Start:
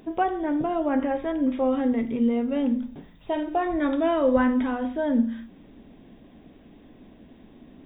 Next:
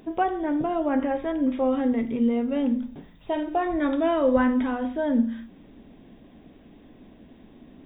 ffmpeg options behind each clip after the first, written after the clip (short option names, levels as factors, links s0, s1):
-af anull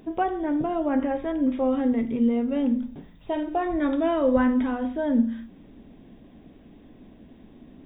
-af "lowshelf=f=360:g=4,volume=0.794"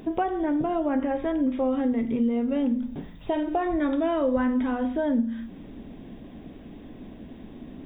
-af "acompressor=threshold=0.0251:ratio=2.5,volume=2.11"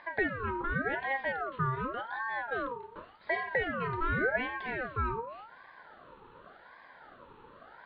-af "highpass=240,equalizer=f=250:t=q:w=4:g=-10,equalizer=f=350:t=q:w=4:g=-8,equalizer=f=1600:t=q:w=4:g=-7,lowpass=f=2700:w=0.5412,lowpass=f=2700:w=1.3066,aeval=exprs='val(0)*sin(2*PI*1000*n/s+1000*0.35/0.88*sin(2*PI*0.88*n/s))':c=same"